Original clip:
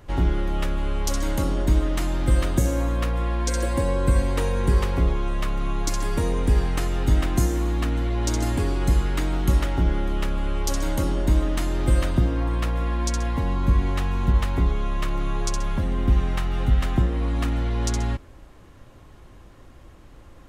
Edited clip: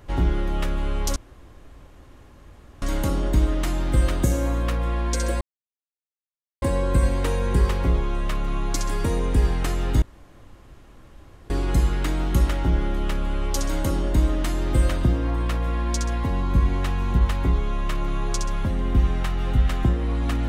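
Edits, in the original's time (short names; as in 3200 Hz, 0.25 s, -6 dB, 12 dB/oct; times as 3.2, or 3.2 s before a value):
1.16 insert room tone 1.66 s
3.75 insert silence 1.21 s
7.15–8.63 room tone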